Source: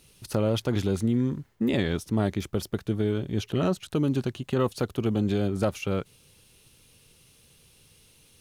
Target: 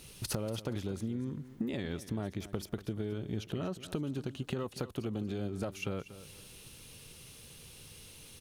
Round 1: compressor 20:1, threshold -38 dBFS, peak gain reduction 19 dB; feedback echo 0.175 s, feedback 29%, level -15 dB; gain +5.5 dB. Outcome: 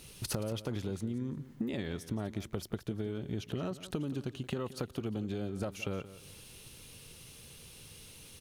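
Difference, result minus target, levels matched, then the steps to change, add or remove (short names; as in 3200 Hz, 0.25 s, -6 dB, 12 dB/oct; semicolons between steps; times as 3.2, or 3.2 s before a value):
echo 62 ms early
change: feedback echo 0.237 s, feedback 29%, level -15 dB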